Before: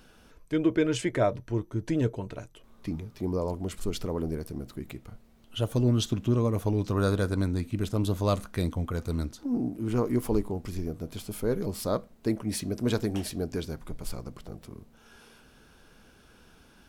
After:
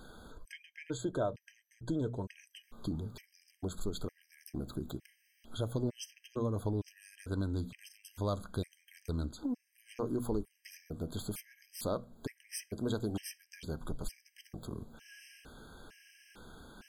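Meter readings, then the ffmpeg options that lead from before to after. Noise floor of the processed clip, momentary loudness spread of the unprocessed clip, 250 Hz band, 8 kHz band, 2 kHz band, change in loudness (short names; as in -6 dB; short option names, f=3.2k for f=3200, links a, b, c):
-75 dBFS, 14 LU, -10.0 dB, -6.5 dB, -10.0 dB, -9.5 dB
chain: -af "bandreject=f=60:t=h:w=6,bandreject=f=120:t=h:w=6,bandreject=f=180:t=h:w=6,bandreject=f=240:t=h:w=6,acompressor=threshold=-41dB:ratio=2.5,afftfilt=real='re*gt(sin(2*PI*1.1*pts/sr)*(1-2*mod(floor(b*sr/1024/1600),2)),0)':imag='im*gt(sin(2*PI*1.1*pts/sr)*(1-2*mod(floor(b*sr/1024/1600),2)),0)':win_size=1024:overlap=0.75,volume=4.5dB"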